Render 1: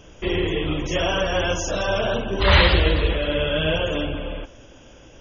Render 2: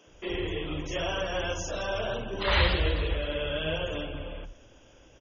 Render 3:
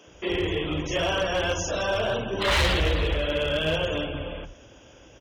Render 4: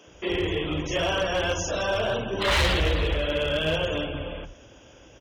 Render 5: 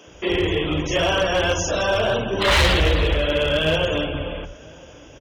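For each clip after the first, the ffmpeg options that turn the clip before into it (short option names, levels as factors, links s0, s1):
-filter_complex "[0:a]acrossover=split=200[s0][s1];[s0]adelay=70[s2];[s2][s1]amix=inputs=2:normalize=0,volume=0.376"
-af "highpass=52,asoftclip=type=hard:threshold=0.0596,volume=2"
-af anull
-filter_complex "[0:a]asplit=2[s0][s1];[s1]adelay=991.3,volume=0.0631,highshelf=f=4000:g=-22.3[s2];[s0][s2]amix=inputs=2:normalize=0,volume=1.88"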